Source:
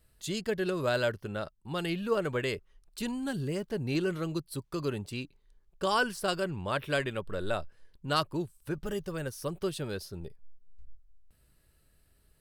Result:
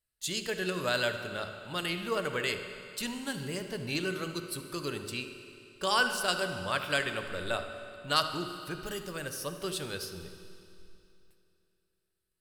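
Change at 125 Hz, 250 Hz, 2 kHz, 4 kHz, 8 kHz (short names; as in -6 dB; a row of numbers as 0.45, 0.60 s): -5.0, -4.0, +3.5, +5.0, +6.0 dB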